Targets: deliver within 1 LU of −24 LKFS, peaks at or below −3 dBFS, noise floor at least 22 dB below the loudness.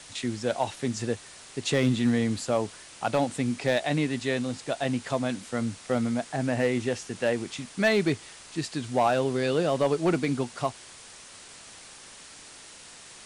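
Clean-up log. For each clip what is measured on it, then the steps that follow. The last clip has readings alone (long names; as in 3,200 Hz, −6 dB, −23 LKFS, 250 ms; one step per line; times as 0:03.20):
share of clipped samples 0.3%; peaks flattened at −15.5 dBFS; background noise floor −48 dBFS; target noise floor −50 dBFS; integrated loudness −28.0 LKFS; sample peak −15.5 dBFS; target loudness −24.0 LKFS
→ clipped peaks rebuilt −15.5 dBFS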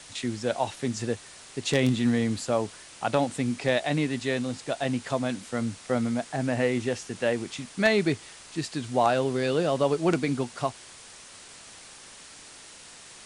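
share of clipped samples 0.0%; background noise floor −48 dBFS; target noise floor −50 dBFS
→ broadband denoise 6 dB, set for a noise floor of −48 dBFS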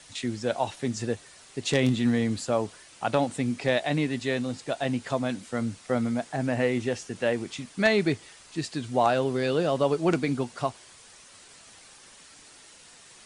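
background noise floor −52 dBFS; integrated loudness −27.5 LKFS; sample peak −7.0 dBFS; target loudness −24.0 LKFS
→ level +3.5 dB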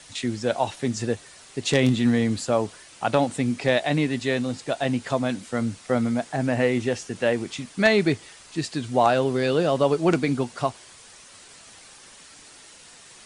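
integrated loudness −24.0 LKFS; sample peak −3.5 dBFS; background noise floor −48 dBFS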